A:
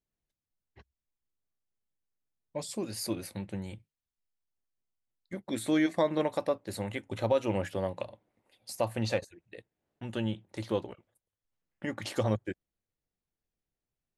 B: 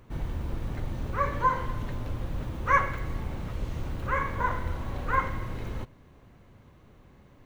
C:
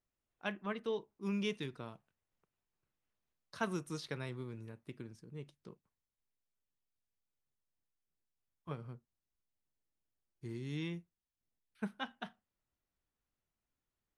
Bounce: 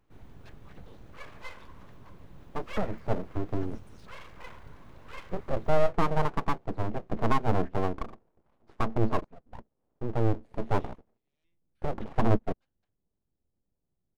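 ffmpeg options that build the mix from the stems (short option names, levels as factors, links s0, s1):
-filter_complex "[0:a]lowpass=1100,tiltshelf=f=770:g=10,volume=1.19[s0];[1:a]volume=0.168,asplit=2[s1][s2];[s2]volume=0.1[s3];[2:a]highpass=f=610:p=1,volume=0.178,asplit=2[s4][s5];[s5]volume=0.075[s6];[s3][s6]amix=inputs=2:normalize=0,aecho=0:1:609:1[s7];[s0][s1][s4][s7]amix=inputs=4:normalize=0,aeval=exprs='abs(val(0))':c=same"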